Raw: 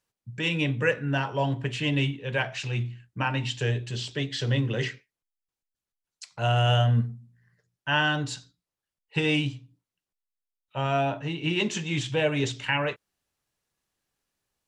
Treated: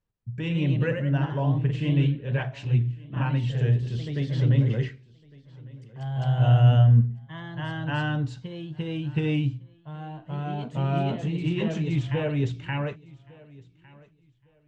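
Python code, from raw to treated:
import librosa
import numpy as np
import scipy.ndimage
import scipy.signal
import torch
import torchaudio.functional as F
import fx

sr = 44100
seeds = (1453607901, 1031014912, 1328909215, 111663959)

y = fx.riaa(x, sr, side='playback')
y = fx.echo_pitch(y, sr, ms=139, semitones=1, count=2, db_per_echo=-6.0)
y = fx.echo_feedback(y, sr, ms=1156, feedback_pct=22, wet_db=-23)
y = F.gain(torch.from_numpy(y), -6.0).numpy()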